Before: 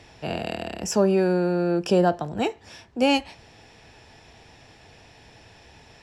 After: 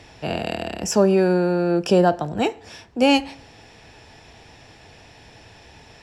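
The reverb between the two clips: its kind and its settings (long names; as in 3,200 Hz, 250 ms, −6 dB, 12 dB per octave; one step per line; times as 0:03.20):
feedback delay network reverb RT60 0.86 s, low-frequency decay 0.75×, high-frequency decay 0.65×, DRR 20 dB
level +3.5 dB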